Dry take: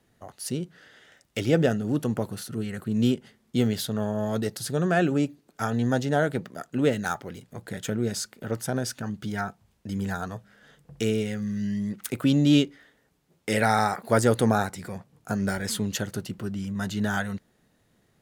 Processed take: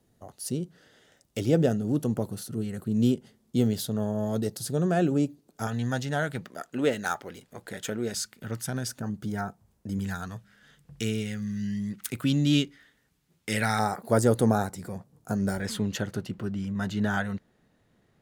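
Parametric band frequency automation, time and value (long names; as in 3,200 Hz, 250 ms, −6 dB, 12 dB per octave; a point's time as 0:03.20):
parametric band −9 dB 2 octaves
1,900 Hz
from 0:05.67 390 Hz
from 0:06.46 120 Hz
from 0:08.14 530 Hz
from 0:08.88 2,800 Hz
from 0:09.99 560 Hz
from 0:13.79 2,400 Hz
from 0:15.60 14,000 Hz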